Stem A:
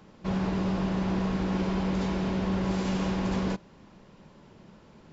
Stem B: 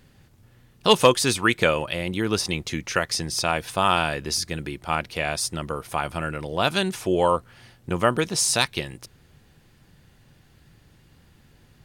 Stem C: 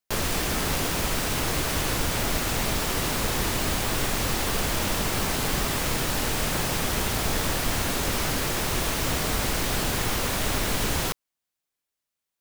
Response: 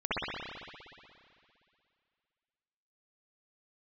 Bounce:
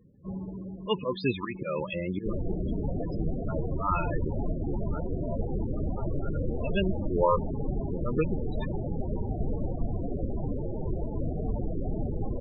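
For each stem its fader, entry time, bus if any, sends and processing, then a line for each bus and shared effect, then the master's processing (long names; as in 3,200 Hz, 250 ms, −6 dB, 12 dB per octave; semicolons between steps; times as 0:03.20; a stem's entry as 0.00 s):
−2.0 dB, 0.00 s, no send, expander for the loud parts 1.5 to 1, over −38 dBFS; automatic ducking −11 dB, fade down 0.95 s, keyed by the second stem
−2.0 dB, 0.00 s, no send, low-pass filter 3,800 Hz 24 dB per octave; volume swells 160 ms; notch comb filter 760 Hz
0.0 dB, 2.15 s, no send, moving average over 21 samples; mains-hum notches 60/120/180/240/300 Hz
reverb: not used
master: spectral peaks only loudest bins 16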